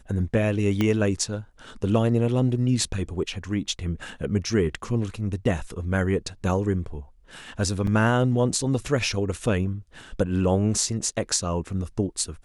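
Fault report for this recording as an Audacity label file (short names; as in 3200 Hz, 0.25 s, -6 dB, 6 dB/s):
0.810000	0.810000	pop -11 dBFS
7.870000	7.870000	gap 3.6 ms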